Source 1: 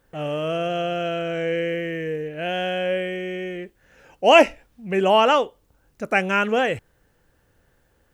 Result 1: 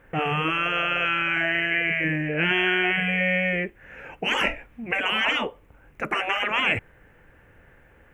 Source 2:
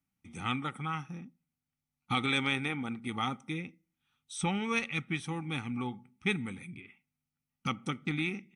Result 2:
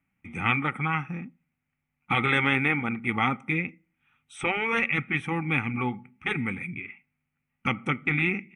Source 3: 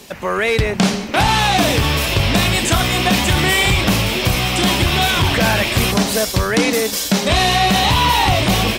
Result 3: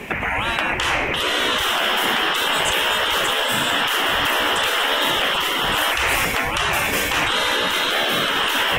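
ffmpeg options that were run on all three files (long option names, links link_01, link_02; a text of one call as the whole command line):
ffmpeg -i in.wav -af "highshelf=frequency=3200:width_type=q:width=3:gain=-11.5,afftfilt=real='re*lt(hypot(re,im),0.2)':imag='im*lt(hypot(re,im),0.2)':win_size=1024:overlap=0.75,volume=8dB" out.wav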